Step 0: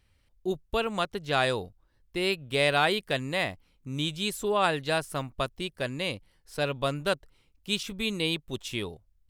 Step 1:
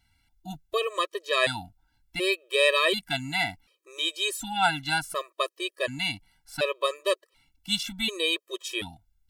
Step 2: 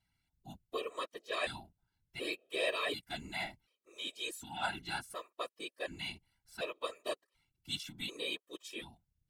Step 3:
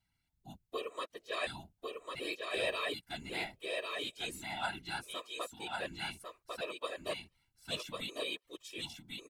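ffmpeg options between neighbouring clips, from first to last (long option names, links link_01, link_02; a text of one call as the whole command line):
ffmpeg -i in.wav -af "lowshelf=frequency=440:gain=-9.5,afftfilt=real='re*gt(sin(2*PI*0.68*pts/sr)*(1-2*mod(floor(b*sr/1024/330),2)),0)':imag='im*gt(sin(2*PI*0.68*pts/sr)*(1-2*mod(floor(b*sr/1024/330),2)),0)':win_size=1024:overlap=0.75,volume=7dB" out.wav
ffmpeg -i in.wav -af "afftfilt=real='hypot(re,im)*cos(2*PI*random(0))':imag='hypot(re,im)*sin(2*PI*random(1))':win_size=512:overlap=0.75,volume=-6.5dB" out.wav
ffmpeg -i in.wav -af "aecho=1:1:1099:0.668,volume=-1dB" out.wav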